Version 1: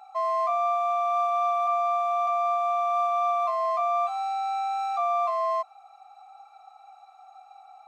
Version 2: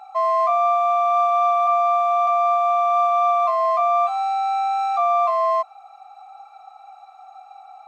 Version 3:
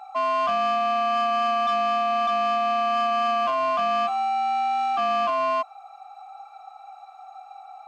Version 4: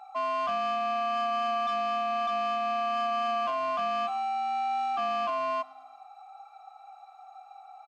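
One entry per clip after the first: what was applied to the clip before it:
high-shelf EQ 4,400 Hz −5.5 dB; level +7 dB
soft clipping −19.5 dBFS, distortion −12 dB
repeating echo 110 ms, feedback 53%, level −22 dB; level −6 dB

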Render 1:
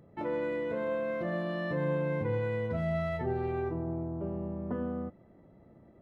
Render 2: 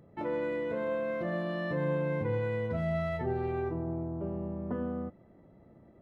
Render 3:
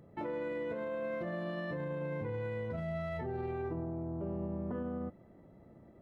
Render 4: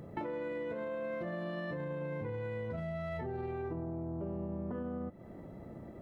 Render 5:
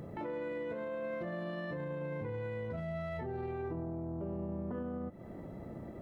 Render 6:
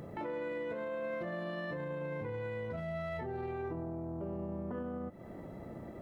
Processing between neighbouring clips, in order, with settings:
no processing that can be heard
brickwall limiter −30.5 dBFS, peak gain reduction 10.5 dB
downward compressor 6 to 1, threshold −46 dBFS, peak gain reduction 11.5 dB; level +9.5 dB
brickwall limiter −34.5 dBFS, peak gain reduction 9 dB; level +2.5 dB
low-shelf EQ 440 Hz −4.5 dB; level +2.5 dB

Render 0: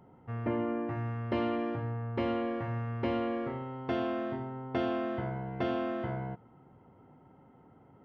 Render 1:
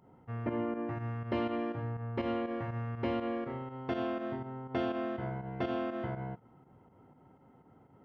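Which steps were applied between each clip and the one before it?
fake sidechain pumping 122 BPM, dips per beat 2, −9 dB, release 87 ms
level −1.5 dB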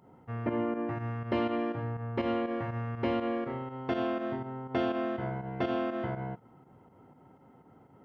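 low-shelf EQ 81 Hz −6 dB
level +3.5 dB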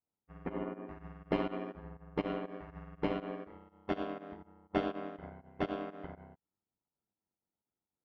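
ring modulation 49 Hz
expander for the loud parts 2.5 to 1, over −54 dBFS
level +2 dB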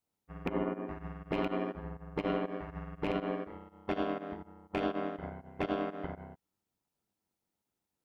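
loose part that buzzes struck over −34 dBFS, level −27 dBFS
brickwall limiter −27.5 dBFS, peak gain reduction 11 dB
level +6 dB

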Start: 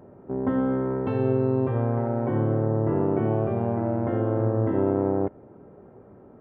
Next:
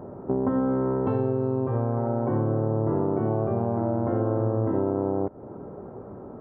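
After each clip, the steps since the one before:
high shelf with overshoot 1,600 Hz −8 dB, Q 1.5
downward compressor 6 to 1, threshold −30 dBFS, peak gain reduction 12 dB
level +8.5 dB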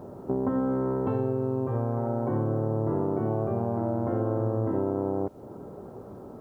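bit reduction 11 bits
level −2.5 dB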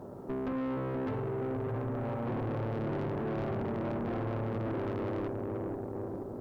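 bucket-brigade delay 476 ms, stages 2,048, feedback 63%, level −5 dB
tube saturation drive 31 dB, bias 0.6

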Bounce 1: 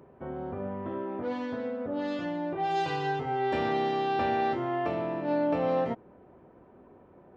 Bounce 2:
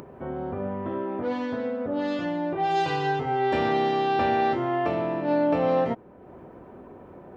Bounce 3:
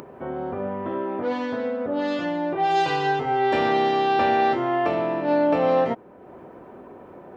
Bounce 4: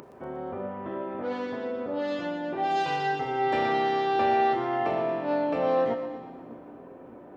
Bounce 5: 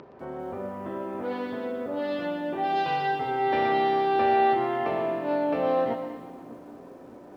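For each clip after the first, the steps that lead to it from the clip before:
upward compression, threshold −42 dBFS; level +4.5 dB
low-shelf EQ 160 Hz −10.5 dB; level +4 dB
echo with a time of its own for lows and highs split 400 Hz, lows 606 ms, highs 119 ms, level −11 dB; four-comb reverb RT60 1.9 s, combs from 26 ms, DRR 10 dB; level −6 dB
low-pass filter 4,800 Hz 24 dB per octave; feedback echo at a low word length 194 ms, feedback 35%, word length 9 bits, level −12.5 dB

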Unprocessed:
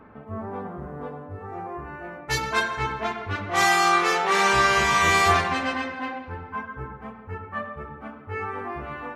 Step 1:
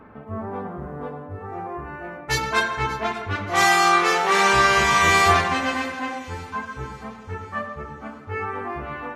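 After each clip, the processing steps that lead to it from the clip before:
delay with a high-pass on its return 584 ms, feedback 51%, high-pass 2,700 Hz, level −17 dB
level +2.5 dB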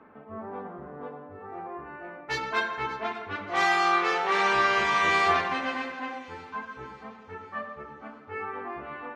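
three-way crossover with the lows and the highs turned down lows −13 dB, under 190 Hz, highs −18 dB, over 4,900 Hz
level −6 dB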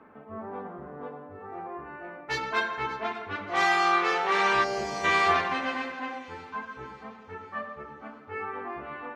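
gain on a spectral selection 0:04.64–0:05.05, 920–4,000 Hz −14 dB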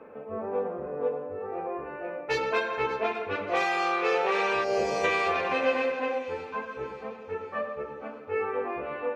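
downward compressor 6 to 1, threshold −26 dBFS, peak gain reduction 8 dB
hollow resonant body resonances 500/2,500 Hz, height 16 dB, ringing for 30 ms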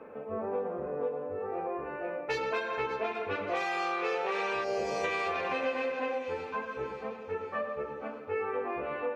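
downward compressor 3 to 1, threshold −30 dBFS, peak gain reduction 8 dB

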